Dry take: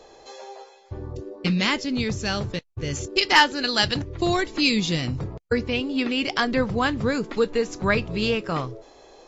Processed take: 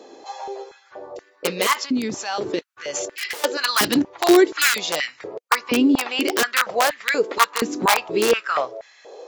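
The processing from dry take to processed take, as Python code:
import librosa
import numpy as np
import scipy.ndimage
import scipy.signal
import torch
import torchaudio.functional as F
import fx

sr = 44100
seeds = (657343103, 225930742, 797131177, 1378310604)

y = (np.mod(10.0 ** (13.0 / 20.0) * x + 1.0, 2.0) - 1.0) / 10.0 ** (13.0 / 20.0)
y = fx.over_compress(y, sr, threshold_db=-30.0, ratio=-1.0, at=(1.73, 3.44))
y = fx.filter_held_highpass(y, sr, hz=4.2, low_hz=270.0, high_hz=1900.0)
y = F.gain(torch.from_numpy(y), 2.0).numpy()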